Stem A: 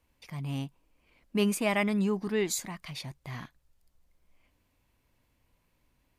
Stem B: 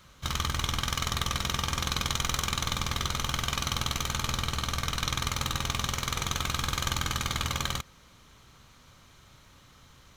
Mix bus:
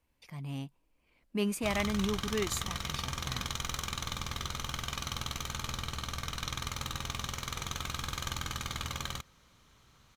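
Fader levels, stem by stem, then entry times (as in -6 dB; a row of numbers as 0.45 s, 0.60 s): -4.5 dB, -7.0 dB; 0.00 s, 1.40 s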